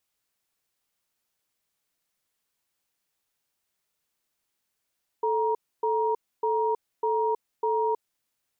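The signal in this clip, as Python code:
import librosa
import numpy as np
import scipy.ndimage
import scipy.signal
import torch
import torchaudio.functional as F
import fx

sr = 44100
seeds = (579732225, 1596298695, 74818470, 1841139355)

y = fx.cadence(sr, length_s=2.79, low_hz=439.0, high_hz=943.0, on_s=0.32, off_s=0.28, level_db=-25.0)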